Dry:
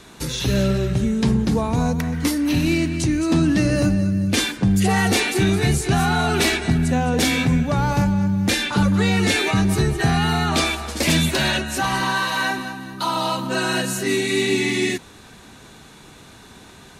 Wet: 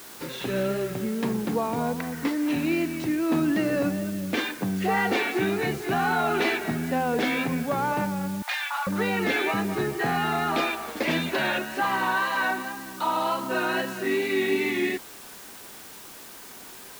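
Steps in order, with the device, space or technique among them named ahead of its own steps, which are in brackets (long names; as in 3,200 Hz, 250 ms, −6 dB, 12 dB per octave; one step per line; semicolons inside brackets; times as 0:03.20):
wax cylinder (band-pass filter 290–2,300 Hz; tape wow and flutter; white noise bed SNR 18 dB)
0:08.42–0:08.87: Butterworth high-pass 730 Hz 48 dB per octave
level −2 dB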